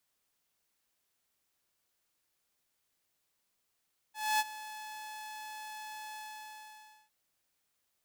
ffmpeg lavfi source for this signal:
ffmpeg -f lavfi -i "aevalsrc='0.0708*(2*mod(859*t,1)-1)':duration=2.959:sample_rate=44100,afade=type=in:duration=0.255,afade=type=out:start_time=0.255:duration=0.037:silence=0.141,afade=type=out:start_time=2.01:duration=0.949" out.wav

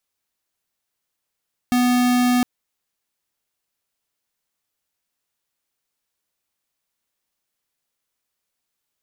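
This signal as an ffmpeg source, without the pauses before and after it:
ffmpeg -f lavfi -i "aevalsrc='0.141*(2*lt(mod(247*t,1),0.5)-1)':duration=0.71:sample_rate=44100" out.wav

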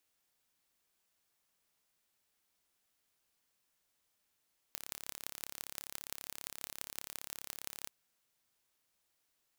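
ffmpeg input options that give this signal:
ffmpeg -f lavfi -i "aevalsrc='0.266*eq(mod(n,1264),0)*(0.5+0.5*eq(mod(n,7584),0))':duration=3.14:sample_rate=44100" out.wav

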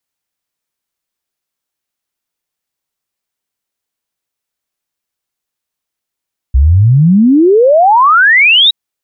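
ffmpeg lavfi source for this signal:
ffmpeg -f lavfi -i "aevalsrc='0.668*clip(min(t,2.17-t)/0.01,0,1)*sin(2*PI*61*2.17/log(3900/61)*(exp(log(3900/61)*t/2.17)-1))':duration=2.17:sample_rate=44100" out.wav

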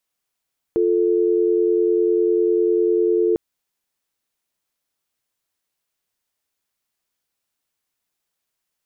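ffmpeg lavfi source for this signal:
ffmpeg -f lavfi -i "aevalsrc='0.133*(sin(2*PI*350*t)+sin(2*PI*440*t))':duration=2.6:sample_rate=44100" out.wav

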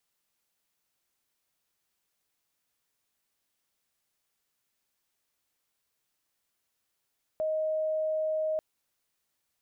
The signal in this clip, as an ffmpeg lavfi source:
ffmpeg -f lavfi -i "sine=frequency=626:duration=1.19:sample_rate=44100,volume=-8.44dB" out.wav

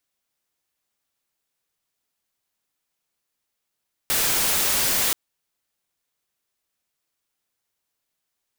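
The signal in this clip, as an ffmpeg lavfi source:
ffmpeg -f lavfi -i "anoisesrc=color=white:amplitude=0.146:duration=1.03:sample_rate=44100:seed=1" out.wav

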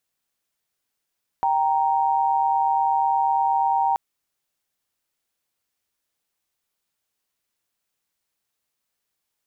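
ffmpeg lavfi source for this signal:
ffmpeg -f lavfi -i "aevalsrc='0.0944*(sin(2*PI*783.99*t)+sin(2*PI*932.33*t))':duration=2.53:sample_rate=44100" out.wav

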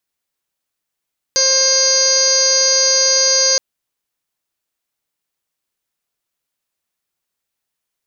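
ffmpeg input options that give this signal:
ffmpeg -f lavfi -i "aevalsrc='0.1*sin(2*PI*531*t)+0.0251*sin(2*PI*1062*t)+0.0422*sin(2*PI*1593*t)+0.0282*sin(2*PI*2124*t)+0.0141*sin(2*PI*2655*t)+0.015*sin(2*PI*3186*t)+0.0141*sin(2*PI*3717*t)+0.0708*sin(2*PI*4248*t)+0.188*sin(2*PI*4779*t)+0.0251*sin(2*PI*5310*t)+0.106*sin(2*PI*5841*t)+0.158*sin(2*PI*6372*t)':duration=2.22:sample_rate=44100" out.wav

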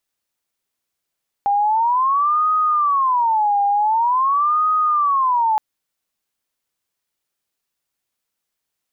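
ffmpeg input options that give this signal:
ffmpeg -f lavfi -i "aevalsrc='0.2*sin(2*PI*(1028.5*t-221.5/(2*PI*0.46)*sin(2*PI*0.46*t)))':duration=4.12:sample_rate=44100" out.wav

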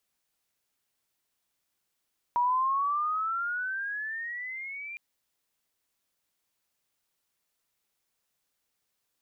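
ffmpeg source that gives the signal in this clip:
ffmpeg -f lavfi -i "aevalsrc='pow(10,(-22-15*t/2.61)/20)*sin(2*PI*954*2.61/(16*log(2)/12)*(exp(16*log(2)/12*t/2.61)-1))':duration=2.61:sample_rate=44100" out.wav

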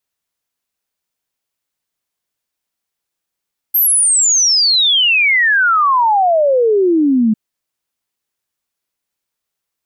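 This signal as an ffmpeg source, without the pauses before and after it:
ffmpeg -f lavfi -i "aevalsrc='0.355*clip(min(t,3.6-t)/0.01,0,1)*sin(2*PI*13000*3.6/log(210/13000)*(exp(log(210/13000)*t/3.6)-1))':duration=3.6:sample_rate=44100" out.wav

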